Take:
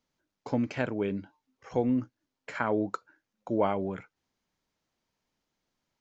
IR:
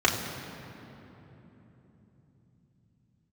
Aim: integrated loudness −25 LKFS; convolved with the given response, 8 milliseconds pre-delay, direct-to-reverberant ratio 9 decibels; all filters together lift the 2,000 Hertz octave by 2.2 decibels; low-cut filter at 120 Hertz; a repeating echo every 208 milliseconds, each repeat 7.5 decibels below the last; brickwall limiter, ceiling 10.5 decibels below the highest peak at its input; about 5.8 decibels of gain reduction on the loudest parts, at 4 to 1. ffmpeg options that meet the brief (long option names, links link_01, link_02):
-filter_complex "[0:a]highpass=120,equalizer=frequency=2000:width_type=o:gain=3,acompressor=threshold=-29dB:ratio=4,alimiter=level_in=1.5dB:limit=-24dB:level=0:latency=1,volume=-1.5dB,aecho=1:1:208|416|624|832|1040:0.422|0.177|0.0744|0.0312|0.0131,asplit=2[link_01][link_02];[1:a]atrim=start_sample=2205,adelay=8[link_03];[link_02][link_03]afir=irnorm=-1:irlink=0,volume=-25dB[link_04];[link_01][link_04]amix=inputs=2:normalize=0,volume=12.5dB"